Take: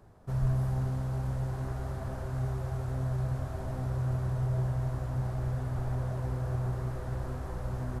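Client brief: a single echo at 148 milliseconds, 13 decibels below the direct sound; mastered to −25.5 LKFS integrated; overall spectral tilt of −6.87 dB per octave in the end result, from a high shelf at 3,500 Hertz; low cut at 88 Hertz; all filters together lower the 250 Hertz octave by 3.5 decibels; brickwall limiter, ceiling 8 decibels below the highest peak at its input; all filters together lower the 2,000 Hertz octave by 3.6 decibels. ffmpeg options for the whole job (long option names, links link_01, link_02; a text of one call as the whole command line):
ffmpeg -i in.wav -af "highpass=88,equalizer=frequency=250:width_type=o:gain=-7,equalizer=frequency=2000:width_type=o:gain=-7,highshelf=frequency=3500:gain=8,alimiter=level_in=7.5dB:limit=-24dB:level=0:latency=1,volume=-7.5dB,aecho=1:1:148:0.224,volume=13.5dB" out.wav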